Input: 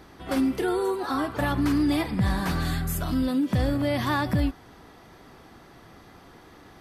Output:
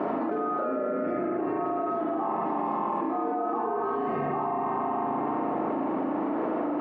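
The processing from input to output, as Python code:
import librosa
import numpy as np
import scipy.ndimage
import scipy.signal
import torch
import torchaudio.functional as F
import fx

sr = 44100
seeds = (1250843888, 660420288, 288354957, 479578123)

p1 = x * np.sin(2.0 * np.pi * 980.0 * np.arange(len(x)) / sr)
p2 = fx.ladder_bandpass(p1, sr, hz=340.0, resonance_pct=60)
p3 = p2 + fx.echo_feedback(p2, sr, ms=442, feedback_pct=52, wet_db=-22.0, dry=0)
p4 = fx.rev_spring(p3, sr, rt60_s=2.4, pass_ms=(34, 41), chirp_ms=50, drr_db=-4.5)
p5 = fx.env_flatten(p4, sr, amount_pct=100)
y = p5 * librosa.db_to_amplitude(7.5)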